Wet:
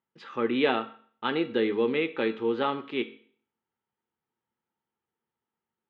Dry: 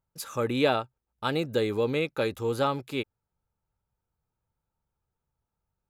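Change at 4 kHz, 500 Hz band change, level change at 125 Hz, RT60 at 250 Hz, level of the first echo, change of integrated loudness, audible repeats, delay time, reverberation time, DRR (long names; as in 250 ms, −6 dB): −0.5 dB, 0.0 dB, −11.0 dB, 0.50 s, no echo audible, +0.5 dB, no echo audible, no echo audible, 0.50 s, 9.0 dB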